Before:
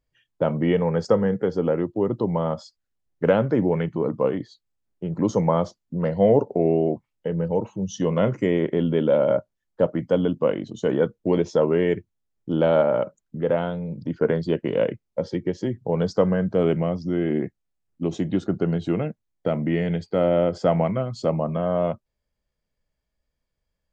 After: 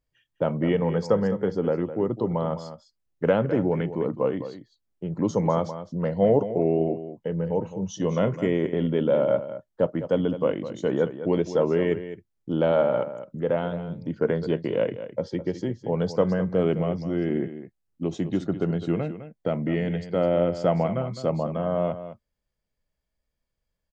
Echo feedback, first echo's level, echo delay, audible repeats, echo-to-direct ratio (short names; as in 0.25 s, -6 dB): no steady repeat, -12.0 dB, 0.208 s, 1, -12.0 dB